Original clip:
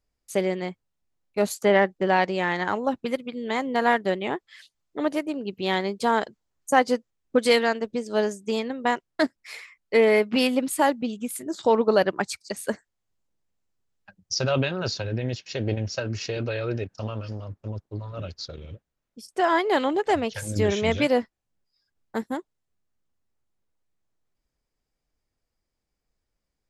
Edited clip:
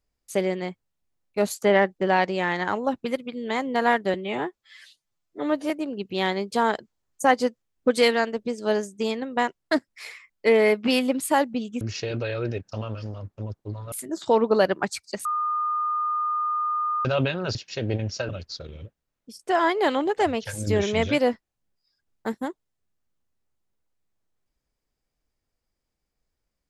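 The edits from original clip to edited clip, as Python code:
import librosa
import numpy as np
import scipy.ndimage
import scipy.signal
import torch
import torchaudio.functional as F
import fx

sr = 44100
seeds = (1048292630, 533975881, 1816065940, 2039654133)

y = fx.edit(x, sr, fx.stretch_span(start_s=4.14, length_s=1.04, factor=1.5),
    fx.bleep(start_s=12.62, length_s=1.8, hz=1220.0, db=-22.5),
    fx.cut(start_s=14.92, length_s=0.41),
    fx.move(start_s=16.07, length_s=2.11, to_s=11.29), tone=tone)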